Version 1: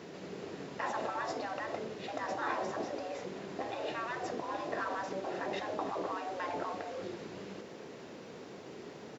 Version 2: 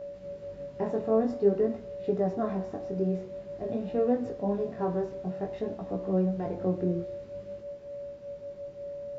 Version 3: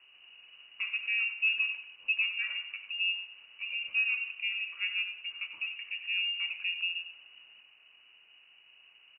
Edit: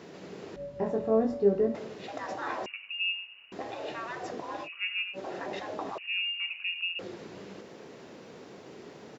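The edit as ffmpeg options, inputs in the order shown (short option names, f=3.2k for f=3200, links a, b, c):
-filter_complex "[2:a]asplit=3[a][b][c];[0:a]asplit=5[d][e][f][g][h];[d]atrim=end=0.562[i];[1:a]atrim=start=0.558:end=1.752[j];[e]atrim=start=1.748:end=2.662[k];[a]atrim=start=2.658:end=3.522[l];[f]atrim=start=3.518:end=4.69[m];[b]atrim=start=4.63:end=5.19[n];[g]atrim=start=5.13:end=5.982[o];[c]atrim=start=5.978:end=6.992[p];[h]atrim=start=6.988[q];[i][j]acrossfade=d=0.004:c1=hsin:c2=hsin[r];[r][k]acrossfade=d=0.004:c1=hsin:c2=hsin[s];[s][l]acrossfade=d=0.004:c1=hsin:c2=hsin[t];[t][m]acrossfade=d=0.004:c1=hsin:c2=hsin[u];[u][n]acrossfade=d=0.06:c1=tri:c2=tri[v];[v][o]acrossfade=d=0.06:c1=tri:c2=tri[w];[w][p]acrossfade=d=0.004:c1=hsin:c2=hsin[x];[x][q]acrossfade=d=0.004:c1=hsin:c2=hsin"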